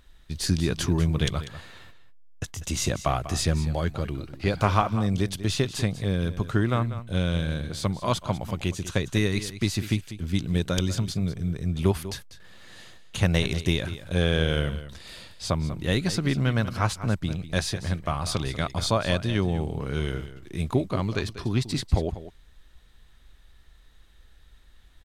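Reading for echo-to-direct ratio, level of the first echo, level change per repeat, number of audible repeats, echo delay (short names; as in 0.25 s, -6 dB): -13.5 dB, -13.5 dB, no steady repeat, 1, 0.194 s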